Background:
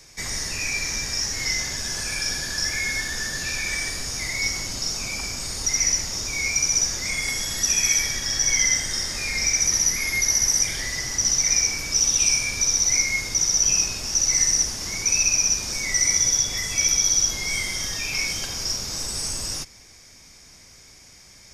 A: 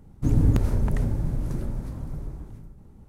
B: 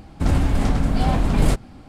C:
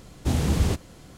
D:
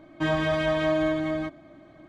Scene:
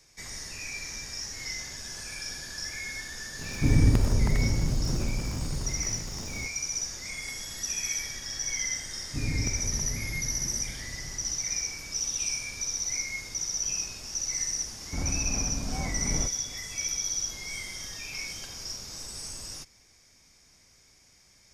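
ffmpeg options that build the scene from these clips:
-filter_complex "[1:a]asplit=2[a][b];[0:a]volume=-11dB[c];[a]aeval=exprs='val(0)+0.5*0.0211*sgn(val(0))':c=same[d];[2:a]lowpass=f=2.4k:p=1[e];[d]atrim=end=3.08,asetpts=PTS-STARTPTS,volume=-1.5dB,afade=t=in:d=0.004:c=hsin,afade=t=out:st=3.076:d=0.004:c=hsin,adelay=3390[f];[b]atrim=end=3.08,asetpts=PTS-STARTPTS,volume=-10.5dB,afade=t=in:d=0.004:c=hsin,afade=t=out:st=3.076:d=0.004:c=hsin,adelay=8910[g];[e]atrim=end=1.88,asetpts=PTS-STARTPTS,volume=-13.5dB,afade=t=in:d=0.004:c=hsin,afade=t=out:st=1.876:d=0.004:c=hsin,adelay=14720[h];[c][f][g][h]amix=inputs=4:normalize=0"

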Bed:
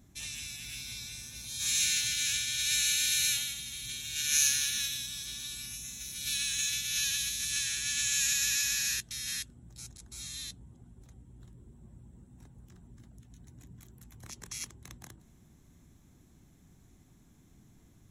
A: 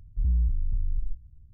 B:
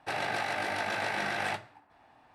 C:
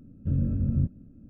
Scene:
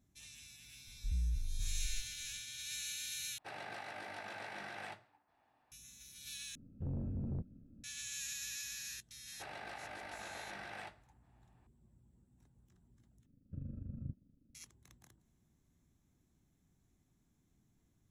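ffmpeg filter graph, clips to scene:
-filter_complex "[2:a]asplit=2[a][b];[3:a]asplit=2[c][d];[0:a]volume=-14.5dB[e];[c]asoftclip=type=tanh:threshold=-26dB[f];[d]tremolo=f=25:d=0.71[g];[e]asplit=4[h][i][j][k];[h]atrim=end=3.384[l];[a]atrim=end=2.34,asetpts=PTS-STARTPTS,volume=-14.5dB[m];[i]atrim=start=5.716:end=6.554[n];[f]atrim=end=1.29,asetpts=PTS-STARTPTS,volume=-9dB[o];[j]atrim=start=7.836:end=13.264[p];[g]atrim=end=1.29,asetpts=PTS-STARTPTS,volume=-16.5dB[q];[k]atrim=start=14.546[r];[1:a]atrim=end=1.53,asetpts=PTS-STARTPTS,volume=-11.5dB,afade=t=in:d=0.004:c=hsin,afade=t=out:st=1.526:d=0.004:c=hsin,adelay=870[s];[b]atrim=end=2.34,asetpts=PTS-STARTPTS,volume=-15.5dB,afade=t=in:d=0.004:c=hsin,afade=t=out:st=2.336:d=0.004:c=hsin,adelay=9330[t];[l][m]acrossfade=d=0.004:c1=hsin:c2=hsin[u];[u][n]acrossfade=d=0.004:c1=hsin:c2=hsin[v];[v][o]acrossfade=d=0.004:c1=hsin:c2=hsin[w];[w][p]acrossfade=d=0.004:c1=hsin:c2=hsin[x];[x][q]acrossfade=d=0.004:c1=hsin:c2=hsin[y];[y][r]acrossfade=d=0.004:c1=hsin:c2=hsin[z];[z][s][t]amix=inputs=3:normalize=0"

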